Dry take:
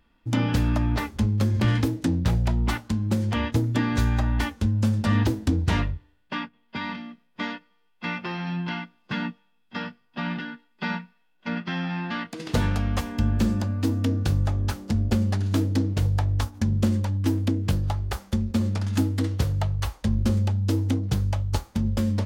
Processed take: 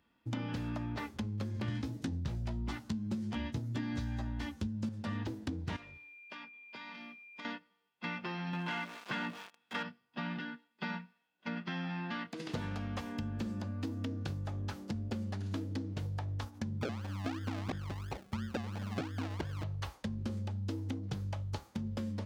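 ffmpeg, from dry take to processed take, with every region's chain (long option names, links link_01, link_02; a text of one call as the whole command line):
ffmpeg -i in.wav -filter_complex "[0:a]asettb=1/sr,asplit=3[link_01][link_02][link_03];[link_01]atrim=end=1.684[link_04];[link_02]atrim=start=1.68:end=4.89,asetpts=PTS-STARTPTS,afade=type=in:duration=0.004:curve=qsin,afade=type=out:start_time=3.206:duration=0.004:curve=qsin,bass=frequency=250:gain=8,treble=frequency=4000:gain=6,asplit=2[link_05][link_06];[link_06]adelay=14,volume=-4dB[link_07];[link_05][link_07]amix=inputs=2:normalize=0,atrim=end_sample=141561[link_08];[link_03]atrim=start=4.886[link_09];[link_04][link_08]acrossfade=duration=0.004:curve1=hsin:curve2=qsin[link_10];[link_10][link_09]acrossfade=duration=0.004:curve1=qsin:curve2=hsin,asettb=1/sr,asplit=3[link_11][link_12][link_13];[link_11]atrim=end=5.764[link_14];[link_12]atrim=start=5.76:end=7.45,asetpts=PTS-STARTPTS,afade=type=in:duration=0.004:curve=qsin,afade=type=out:start_time=1.686:duration=0.004:curve=qsin,bass=frequency=250:gain=-12,treble=frequency=4000:gain=6,acompressor=threshold=-38dB:ratio=8:attack=3.2:release=140:knee=1:detection=peak,aeval=exprs='val(0)+0.00562*sin(2*PI*2400*n/s)':channel_layout=same[link_15];[link_13]atrim=start=7.446[link_16];[link_14][link_15]acrossfade=duration=0.004:curve1=hsin:curve2=qsin[link_17];[link_17][link_16]acrossfade=duration=0.004:curve1=qsin:curve2=hsin,asettb=1/sr,asplit=3[link_18][link_19][link_20];[link_18]atrim=end=8.534[link_21];[link_19]atrim=start=8.53:end=9.83,asetpts=PTS-STARTPTS,afade=type=in:duration=0.004:curve=qsin,afade=type=out:start_time=1.296:duration=0.004:curve=qsin,aeval=exprs='val(0)+0.5*0.00841*sgn(val(0))':channel_layout=same,asplit=2[link_22][link_23];[link_23]highpass=frequency=720:poles=1,volume=17dB,asoftclip=type=tanh:threshold=-16.5dB[link_24];[link_22][link_24]amix=inputs=2:normalize=0,lowpass=frequency=2800:poles=1,volume=-6dB[link_25];[link_20]atrim=start=9.826[link_26];[link_21][link_25]acrossfade=duration=0.004:curve1=hsin:curve2=qsin[link_27];[link_27][link_26]acrossfade=duration=0.004:curve1=qsin:curve2=hsin,asettb=1/sr,asplit=3[link_28][link_29][link_30];[link_28]atrim=end=16.814[link_31];[link_29]atrim=start=16.81:end=19.64,asetpts=PTS-STARTPTS,afade=type=in:duration=0.004:curve=qsin,afade=type=out:start_time=2.826:duration=0.004:curve=qsin,aphaser=in_gain=1:out_gain=1:delay=4.3:decay=0.35:speed=1.2:type=sinusoidal,acrusher=samples=37:mix=1:aa=0.000001:lfo=1:lforange=22.2:lforate=2.9,aeval=exprs='(mod(4.22*val(0)+1,2)-1)/4.22':channel_layout=same[link_32];[link_30]atrim=start=19.636[link_33];[link_31][link_32]acrossfade=duration=0.004:curve1=hsin:curve2=qsin[link_34];[link_34][link_33]acrossfade=duration=0.004:curve1=qsin:curve2=hsin,acrossover=split=5900[link_35][link_36];[link_36]acompressor=threshold=-52dB:ratio=4:attack=1:release=60[link_37];[link_35][link_37]amix=inputs=2:normalize=0,highpass=100,acompressor=threshold=-28dB:ratio=6,volume=-6.5dB" out.wav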